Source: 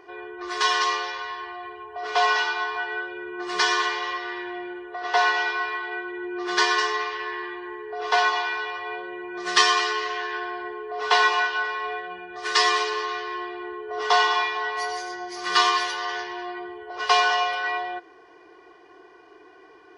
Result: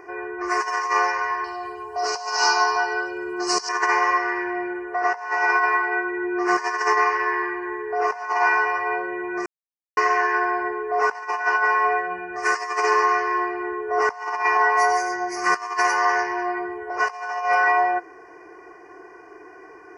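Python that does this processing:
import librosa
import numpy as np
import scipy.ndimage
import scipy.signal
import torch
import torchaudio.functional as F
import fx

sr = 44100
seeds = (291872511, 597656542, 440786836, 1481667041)

y = fx.high_shelf_res(x, sr, hz=2900.0, db=11.0, q=3.0, at=(1.44, 3.69))
y = fx.edit(y, sr, fx.silence(start_s=9.46, length_s=0.51), tone=tone)
y = scipy.signal.sosfilt(scipy.signal.cheby1(2, 1.0, [2200.0, 5600.0], 'bandstop', fs=sr, output='sos'), y)
y = fx.dynamic_eq(y, sr, hz=850.0, q=1.1, threshold_db=-36.0, ratio=4.0, max_db=6)
y = fx.over_compress(y, sr, threshold_db=-24.0, ratio=-0.5)
y = y * 10.0 ** (4.0 / 20.0)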